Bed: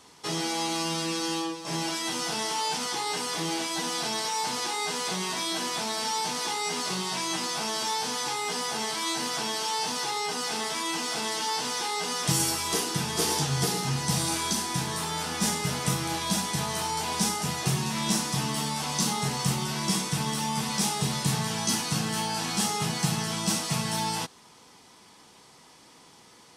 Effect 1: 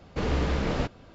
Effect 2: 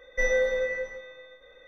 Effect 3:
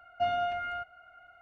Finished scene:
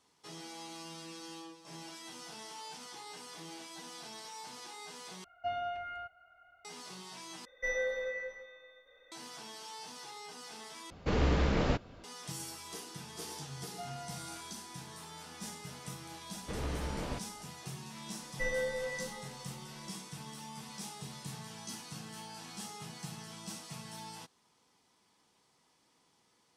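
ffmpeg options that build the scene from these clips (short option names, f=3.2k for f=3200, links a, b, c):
-filter_complex "[3:a]asplit=2[a][b];[2:a]asplit=2[c][d];[1:a]asplit=2[e][f];[0:a]volume=-17.5dB[g];[a]equalizer=f=220:t=o:w=0.36:g=-7[h];[c]lowshelf=f=370:g=-9.5[i];[d]equalizer=f=580:w=5.7:g=-4[j];[g]asplit=4[k][l][m][n];[k]atrim=end=5.244[o];[h]atrim=end=1.41,asetpts=PTS-STARTPTS,volume=-7dB[p];[l]atrim=start=6.646:end=7.454[q];[i]atrim=end=1.67,asetpts=PTS-STARTPTS,volume=-7dB[r];[m]atrim=start=9.116:end=10.904[s];[e]atrim=end=1.14,asetpts=PTS-STARTPTS,volume=-2dB[t];[n]atrim=start=12.036[u];[b]atrim=end=1.41,asetpts=PTS-STARTPTS,volume=-16.5dB,afade=t=in:d=0.004:c=hsin,afade=t=out:st=1.406:d=0.004:c=hsin,adelay=13580[v];[f]atrim=end=1.14,asetpts=PTS-STARTPTS,volume=-11dB,afade=t=in:d=0.004:c=hsin,afade=t=out:st=1.136:d=0.004:c=hsin,adelay=16320[w];[j]atrim=end=1.67,asetpts=PTS-STARTPTS,volume=-9dB,afade=t=in:d=0.004:c=hsin,afade=t=out:st=1.666:d=0.004:c=hsin,adelay=18220[x];[o][p]acrossfade=d=0.004:c1=hsin:c2=hsin[y];[y][q]acrossfade=d=0.004:c1=hsin:c2=hsin[z];[z][r]acrossfade=d=0.004:c1=hsin:c2=hsin[aa];[aa][s]acrossfade=d=0.004:c1=hsin:c2=hsin[ab];[ab][t]acrossfade=d=0.004:c1=hsin:c2=hsin[ac];[ac][u]acrossfade=d=0.004:c1=hsin:c2=hsin[ad];[ad][v][w][x]amix=inputs=4:normalize=0"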